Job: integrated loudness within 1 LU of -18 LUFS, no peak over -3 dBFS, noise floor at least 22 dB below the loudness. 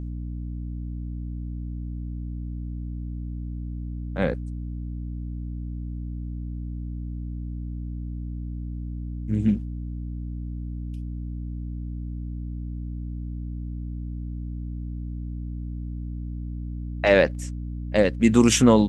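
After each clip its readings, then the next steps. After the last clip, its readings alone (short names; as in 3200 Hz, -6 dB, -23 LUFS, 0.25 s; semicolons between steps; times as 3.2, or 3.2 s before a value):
hum 60 Hz; harmonics up to 300 Hz; hum level -29 dBFS; loudness -29.0 LUFS; peak -3.0 dBFS; loudness target -18.0 LUFS
-> de-hum 60 Hz, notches 5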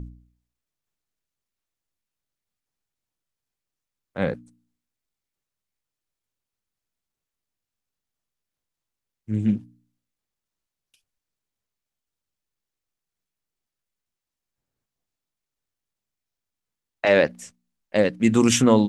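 hum none; loudness -22.0 LUFS; peak -2.5 dBFS; loudness target -18.0 LUFS
-> gain +4 dB; limiter -3 dBFS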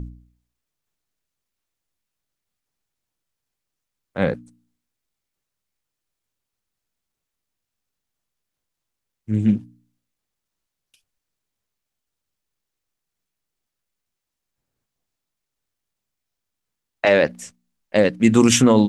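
loudness -18.5 LUFS; peak -3.0 dBFS; noise floor -83 dBFS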